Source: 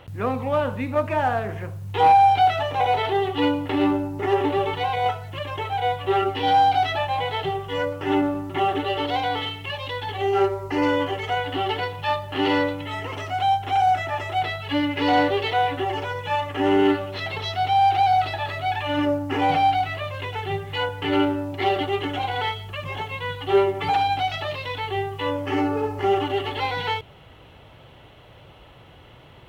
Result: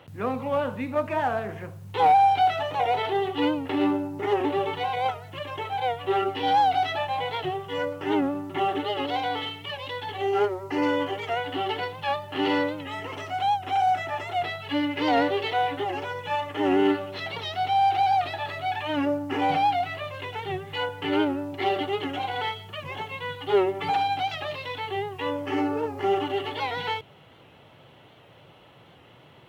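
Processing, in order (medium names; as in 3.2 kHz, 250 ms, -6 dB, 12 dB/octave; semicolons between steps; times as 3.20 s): Chebyshev high-pass 150 Hz, order 2; warped record 78 rpm, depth 100 cents; trim -2.5 dB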